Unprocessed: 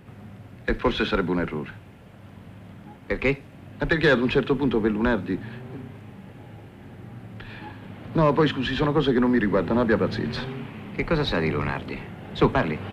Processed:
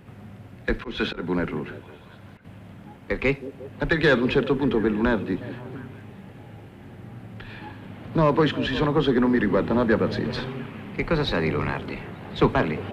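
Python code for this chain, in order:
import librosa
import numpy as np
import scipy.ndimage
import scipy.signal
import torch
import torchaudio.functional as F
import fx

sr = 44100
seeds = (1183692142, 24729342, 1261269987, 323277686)

y = fx.auto_swell(x, sr, attack_ms=198.0, at=(0.69, 2.45))
y = fx.echo_stepped(y, sr, ms=177, hz=320.0, octaves=0.7, feedback_pct=70, wet_db=-11)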